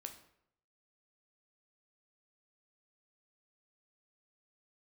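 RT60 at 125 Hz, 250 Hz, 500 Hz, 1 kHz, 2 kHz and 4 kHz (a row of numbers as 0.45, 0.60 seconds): 0.85, 0.70, 0.75, 0.70, 0.60, 0.50 seconds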